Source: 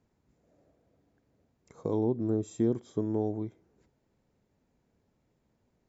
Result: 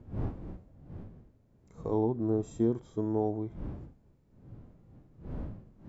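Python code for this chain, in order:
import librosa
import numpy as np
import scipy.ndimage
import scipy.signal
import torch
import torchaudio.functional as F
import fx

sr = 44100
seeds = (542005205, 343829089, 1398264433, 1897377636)

y = fx.dmg_wind(x, sr, seeds[0], corner_hz=180.0, level_db=-40.0)
y = fx.dynamic_eq(y, sr, hz=970.0, q=1.0, threshold_db=-48.0, ratio=4.0, max_db=7)
y = fx.hpss(y, sr, part='percussive', gain_db=-10)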